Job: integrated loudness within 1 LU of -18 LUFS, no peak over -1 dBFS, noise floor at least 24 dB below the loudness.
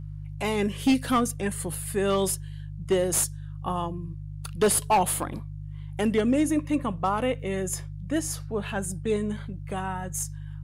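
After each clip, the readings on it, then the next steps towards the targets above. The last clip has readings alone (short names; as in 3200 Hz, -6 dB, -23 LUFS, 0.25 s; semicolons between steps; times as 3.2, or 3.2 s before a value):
clipped 0.6%; flat tops at -16.0 dBFS; hum 50 Hz; harmonics up to 150 Hz; hum level -35 dBFS; loudness -27.0 LUFS; peak -16.0 dBFS; loudness target -18.0 LUFS
-> clip repair -16 dBFS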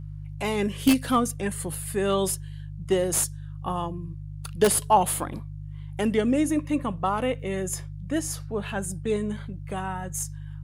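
clipped 0.0%; hum 50 Hz; harmonics up to 150 Hz; hum level -35 dBFS
-> de-hum 50 Hz, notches 3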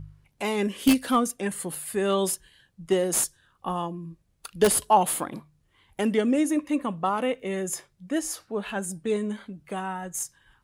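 hum none; loudness -26.5 LUFS; peak -6.5 dBFS; loudness target -18.0 LUFS
-> gain +8.5 dB; limiter -1 dBFS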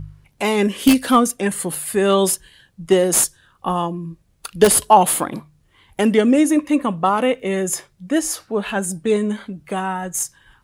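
loudness -18.5 LUFS; peak -1.0 dBFS; noise floor -59 dBFS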